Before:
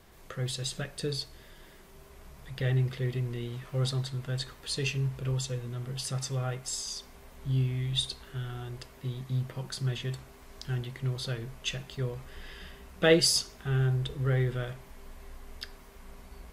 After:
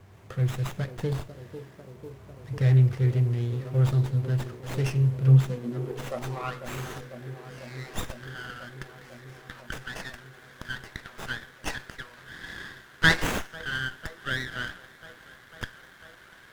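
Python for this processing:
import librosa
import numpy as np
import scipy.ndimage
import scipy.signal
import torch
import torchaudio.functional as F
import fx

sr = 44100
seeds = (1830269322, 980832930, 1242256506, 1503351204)

y = fx.filter_sweep_highpass(x, sr, from_hz=99.0, to_hz=1600.0, start_s=5.17, end_s=6.71, q=5.3)
y = fx.echo_wet_bandpass(y, sr, ms=497, feedback_pct=80, hz=430.0, wet_db=-9.0)
y = fx.running_max(y, sr, window=9)
y = y * 10.0 ** (1.5 / 20.0)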